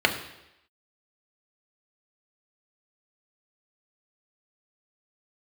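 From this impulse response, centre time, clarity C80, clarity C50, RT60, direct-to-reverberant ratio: 17 ms, 12.0 dB, 10.0 dB, 0.85 s, 3.0 dB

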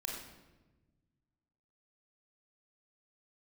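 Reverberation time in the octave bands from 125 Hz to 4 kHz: 2.2, 1.9, 1.3, 1.0, 0.95, 0.80 seconds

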